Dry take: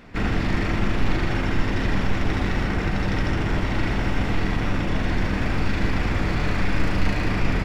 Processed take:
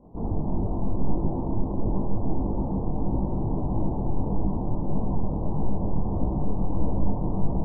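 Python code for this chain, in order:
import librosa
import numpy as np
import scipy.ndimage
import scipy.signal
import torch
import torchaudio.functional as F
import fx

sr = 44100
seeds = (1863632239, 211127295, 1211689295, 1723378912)

y = scipy.signal.sosfilt(scipy.signal.butter(12, 990.0, 'lowpass', fs=sr, output='sos'), x)
y = y + 10.0 ** (-7.5 / 20.0) * np.pad(y, (int(765 * sr / 1000.0), 0))[:len(y)]
y = fx.detune_double(y, sr, cents=55)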